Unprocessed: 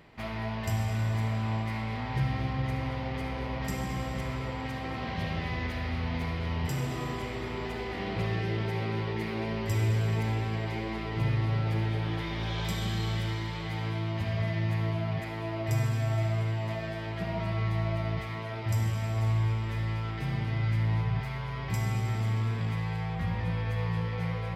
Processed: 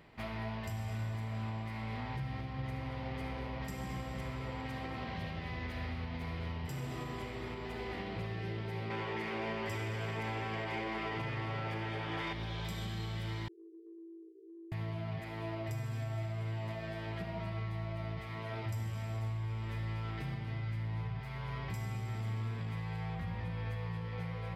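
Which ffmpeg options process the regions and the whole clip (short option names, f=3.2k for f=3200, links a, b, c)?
-filter_complex "[0:a]asettb=1/sr,asplit=3[a][b][c];[a]atrim=end=8.904[d];[b]atrim=start=8.9:end=12.33,asetpts=PTS-STARTPTS,afade=t=in:d=0.004:c=qsin,afade=t=out:st=3.426:d=0.004:c=qsin,bandreject=f=4k:w=8.9,asplit=2[e][f];[f]highpass=f=720:p=1,volume=18dB,asoftclip=type=tanh:threshold=-18dB[g];[e][g]amix=inputs=2:normalize=0,lowpass=f=2.9k:p=1,volume=-6dB[h];[c]atrim=start=12.326[i];[d][h]acrossfade=d=0.004:c1=hsin:c2=qsin[j];[j][i]acrossfade=d=0.004:c1=qsin:c2=hsin,asettb=1/sr,asplit=3[k][l][m];[k]atrim=end=13.484[n];[l]atrim=start=13.48:end=14.72,asetpts=PTS-STARTPTS,afade=t=in:d=0.004:c=qsin,afade=t=out:st=1.236:d=0.004:c=qsin,asuperpass=centerf=370:order=12:qfactor=3.4,acompressor=threshold=-46dB:ratio=4:attack=3.2:release=140:knee=1:detection=peak[o];[m]atrim=start=14.716[p];[n][o]acrossfade=d=0.004:c1=hsin:c2=qsin[q];[q][p]acrossfade=d=0.004:c1=qsin:c2=hsin,equalizer=f=6.2k:w=2.5:g=-2.5,alimiter=level_in=3dB:limit=-24dB:level=0:latency=1:release=397,volume=-3dB,volume=-3.5dB"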